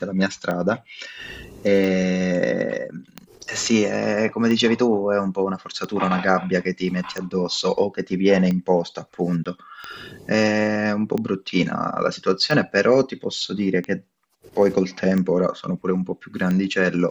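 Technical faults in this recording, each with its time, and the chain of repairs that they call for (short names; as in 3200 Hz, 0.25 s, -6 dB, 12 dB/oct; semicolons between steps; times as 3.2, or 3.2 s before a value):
tick 45 rpm -14 dBFS
9.44–9.46 gap 16 ms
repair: de-click; interpolate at 9.44, 16 ms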